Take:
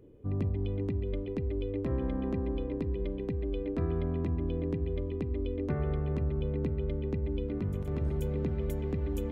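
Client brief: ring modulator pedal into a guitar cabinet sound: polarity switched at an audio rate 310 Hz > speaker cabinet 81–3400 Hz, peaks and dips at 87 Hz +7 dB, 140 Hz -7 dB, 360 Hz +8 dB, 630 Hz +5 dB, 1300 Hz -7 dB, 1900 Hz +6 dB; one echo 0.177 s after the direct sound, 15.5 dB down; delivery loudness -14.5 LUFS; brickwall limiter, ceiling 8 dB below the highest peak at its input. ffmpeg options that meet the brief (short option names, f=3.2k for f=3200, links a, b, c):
-af "alimiter=level_in=4dB:limit=-24dB:level=0:latency=1,volume=-4dB,aecho=1:1:177:0.168,aeval=exprs='val(0)*sgn(sin(2*PI*310*n/s))':c=same,highpass=81,equalizer=f=87:t=q:w=4:g=7,equalizer=f=140:t=q:w=4:g=-7,equalizer=f=360:t=q:w=4:g=8,equalizer=f=630:t=q:w=4:g=5,equalizer=f=1.3k:t=q:w=4:g=-7,equalizer=f=1.9k:t=q:w=4:g=6,lowpass=f=3.4k:w=0.5412,lowpass=f=3.4k:w=1.3066,volume=17.5dB"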